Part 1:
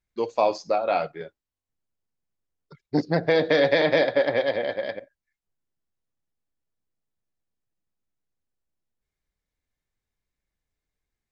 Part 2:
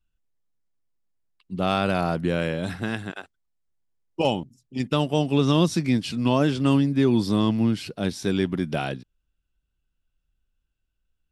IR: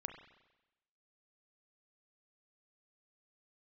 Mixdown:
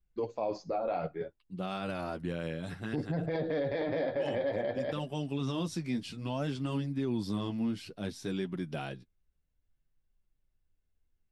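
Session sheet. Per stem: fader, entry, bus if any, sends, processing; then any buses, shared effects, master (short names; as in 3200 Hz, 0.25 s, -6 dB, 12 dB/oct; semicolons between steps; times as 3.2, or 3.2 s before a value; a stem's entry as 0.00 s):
-2.0 dB, 0.00 s, no send, tilt -3 dB/oct
-7.5 dB, 0.00 s, no send, dry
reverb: off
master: flange 0.59 Hz, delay 4.8 ms, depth 8.3 ms, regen -24%; limiter -24.5 dBFS, peak gain reduction 14 dB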